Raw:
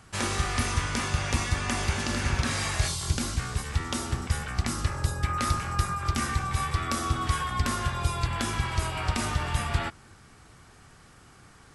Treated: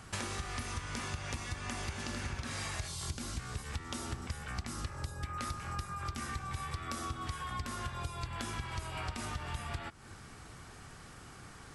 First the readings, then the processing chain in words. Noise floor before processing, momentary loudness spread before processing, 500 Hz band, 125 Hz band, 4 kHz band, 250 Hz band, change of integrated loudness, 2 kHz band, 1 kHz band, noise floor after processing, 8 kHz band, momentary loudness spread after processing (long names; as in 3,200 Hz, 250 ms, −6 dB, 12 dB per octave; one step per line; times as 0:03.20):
−54 dBFS, 3 LU, −10.5 dB, −11.5 dB, −10.0 dB, −11.0 dB, −11.0 dB, −10.5 dB, −10.5 dB, −52 dBFS, −10.5 dB, 12 LU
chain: downward compressor 8 to 1, threshold −38 dBFS, peak gain reduction 19 dB
level +2 dB